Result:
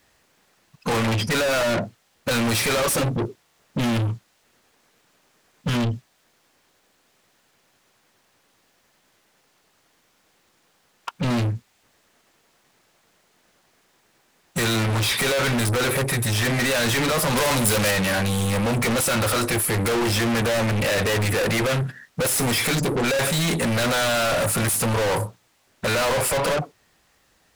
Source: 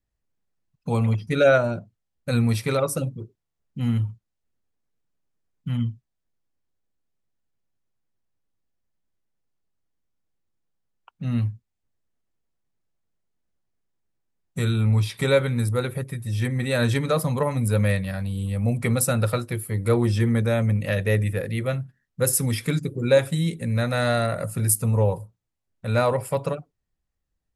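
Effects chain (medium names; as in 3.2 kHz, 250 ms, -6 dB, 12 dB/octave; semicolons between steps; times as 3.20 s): overdrive pedal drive 37 dB, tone 5.7 kHz, clips at -6 dBFS; saturation -20.5 dBFS, distortion -11 dB; 17.33–17.91 s: treble shelf 3.8 kHz +7.5 dB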